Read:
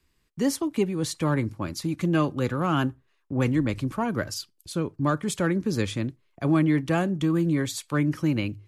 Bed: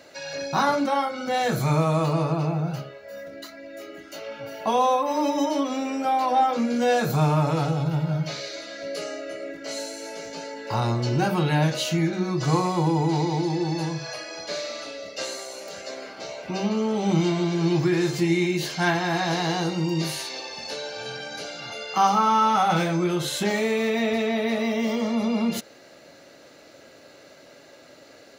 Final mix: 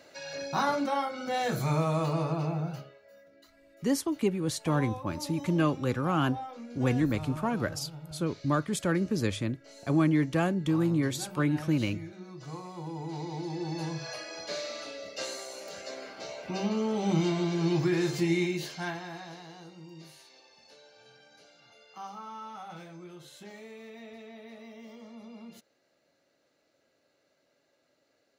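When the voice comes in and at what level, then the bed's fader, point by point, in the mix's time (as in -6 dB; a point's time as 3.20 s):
3.45 s, -3.0 dB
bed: 2.63 s -6 dB
3.24 s -19.5 dB
12.62 s -19.5 dB
14.03 s -5 dB
18.41 s -5 dB
19.48 s -23 dB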